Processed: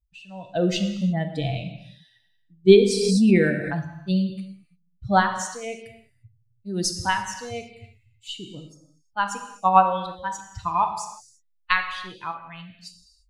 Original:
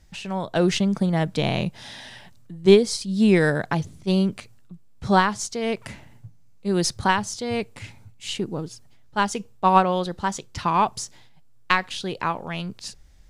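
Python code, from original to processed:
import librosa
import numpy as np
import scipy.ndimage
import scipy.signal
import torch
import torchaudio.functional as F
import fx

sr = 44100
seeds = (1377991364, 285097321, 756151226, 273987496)

y = fx.bin_expand(x, sr, power=2.0)
y = fx.rev_gated(y, sr, seeds[0], gate_ms=370, shape='falling', drr_db=5.0)
y = fx.pre_swell(y, sr, db_per_s=32.0, at=(2.9, 3.81))
y = y * 10.0 ** (1.5 / 20.0)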